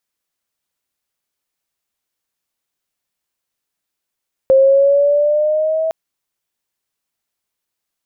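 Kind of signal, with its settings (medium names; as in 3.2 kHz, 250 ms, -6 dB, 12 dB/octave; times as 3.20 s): gliding synth tone sine, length 1.41 s, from 530 Hz, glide +3.5 st, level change -9 dB, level -6 dB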